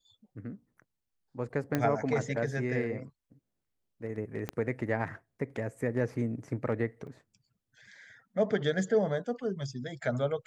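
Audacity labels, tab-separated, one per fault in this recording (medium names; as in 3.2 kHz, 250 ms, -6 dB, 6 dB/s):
1.750000	1.750000	pop -15 dBFS
4.490000	4.490000	pop -19 dBFS
7.070000	7.070000	dropout 2.5 ms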